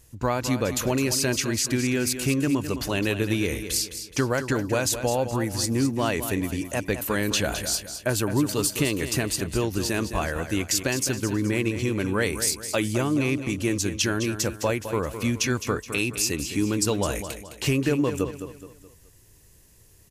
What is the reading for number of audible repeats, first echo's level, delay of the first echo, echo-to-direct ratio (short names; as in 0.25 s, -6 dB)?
4, -10.0 dB, 0.211 s, -9.5 dB